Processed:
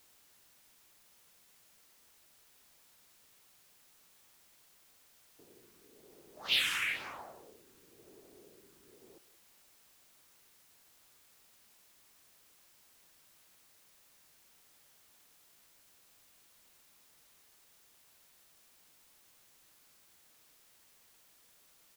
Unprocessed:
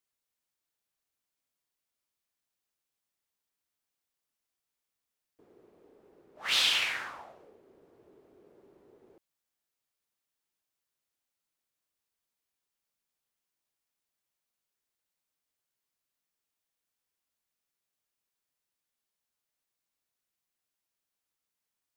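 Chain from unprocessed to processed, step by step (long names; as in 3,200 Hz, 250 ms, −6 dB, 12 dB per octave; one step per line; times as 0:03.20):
all-pass phaser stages 4, 1 Hz, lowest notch 630–4,400 Hz
single-tap delay 180 ms −16.5 dB
background noise white −65 dBFS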